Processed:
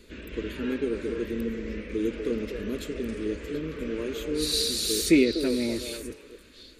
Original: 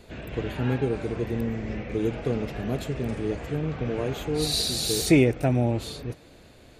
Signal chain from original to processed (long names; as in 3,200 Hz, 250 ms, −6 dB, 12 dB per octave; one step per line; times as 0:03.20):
phaser with its sweep stopped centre 310 Hz, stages 4
on a send: echo through a band-pass that steps 245 ms, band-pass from 550 Hz, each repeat 1.4 octaves, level −3.5 dB